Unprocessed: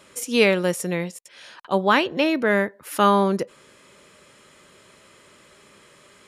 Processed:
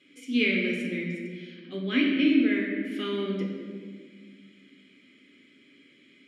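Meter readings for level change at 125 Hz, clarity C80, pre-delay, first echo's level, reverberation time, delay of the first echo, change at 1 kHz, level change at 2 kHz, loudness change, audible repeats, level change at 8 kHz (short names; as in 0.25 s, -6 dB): -7.0 dB, 3.5 dB, 3 ms, none, 1.7 s, none, -24.5 dB, -5.0 dB, -6.0 dB, none, under -20 dB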